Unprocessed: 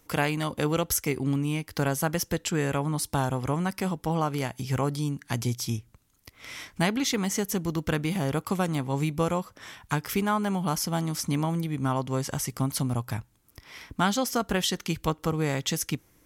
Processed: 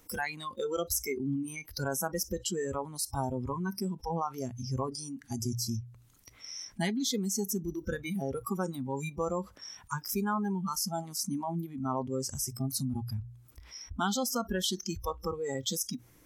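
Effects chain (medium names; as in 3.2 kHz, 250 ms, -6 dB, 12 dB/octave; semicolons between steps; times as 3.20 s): spectral noise reduction 26 dB; hum notches 60/120 Hz; level flattener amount 50%; trim -6 dB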